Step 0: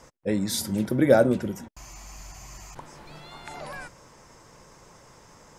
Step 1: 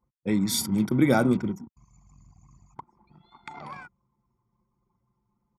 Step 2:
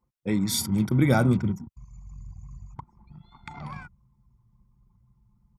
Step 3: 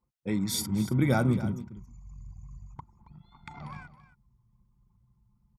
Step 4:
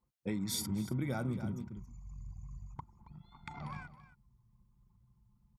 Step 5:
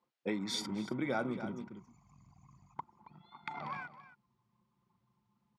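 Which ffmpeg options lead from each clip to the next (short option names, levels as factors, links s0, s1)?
-af "anlmdn=1.58,highpass=120,aecho=1:1:0.9:0.71"
-af "asubboost=boost=10.5:cutoff=130"
-af "aecho=1:1:273:0.178,volume=0.631"
-af "acompressor=threshold=0.0282:ratio=6,volume=0.841"
-af "highpass=320,lowpass=4000,volume=2"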